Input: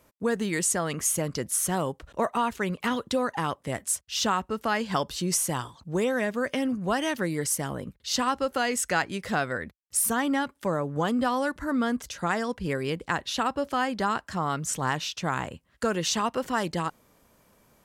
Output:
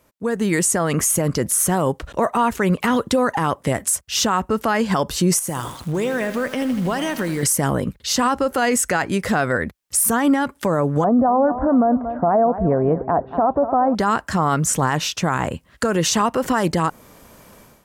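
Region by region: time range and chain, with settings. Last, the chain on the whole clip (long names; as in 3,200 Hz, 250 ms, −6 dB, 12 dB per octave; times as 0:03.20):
0:05.39–0:07.43: downward compressor 4 to 1, threshold −36 dBFS + feedback echo at a low word length 80 ms, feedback 80%, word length 8 bits, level −12 dB
0:11.04–0:13.95: low-pass filter 1,100 Hz 24 dB per octave + parametric band 680 Hz +14.5 dB 0.29 octaves + repeating echo 232 ms, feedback 42%, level −16 dB
whole clip: dynamic equaliser 3,700 Hz, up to −7 dB, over −46 dBFS, Q 0.91; automatic gain control gain up to 14.5 dB; boost into a limiter +10 dB; level −8.5 dB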